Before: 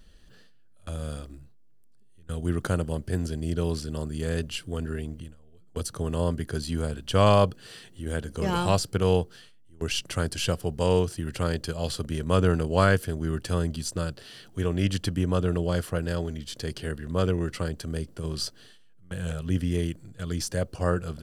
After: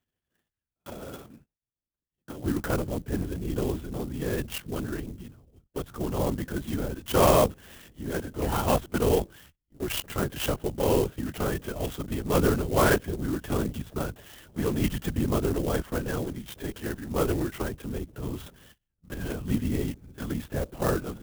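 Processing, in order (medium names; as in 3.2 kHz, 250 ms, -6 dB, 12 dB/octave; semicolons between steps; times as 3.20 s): LPC vocoder at 8 kHz whisper; high-pass 320 Hz 6 dB/octave, from 2.44 s 52 Hz; gate -53 dBFS, range -23 dB; sampling jitter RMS 0.053 ms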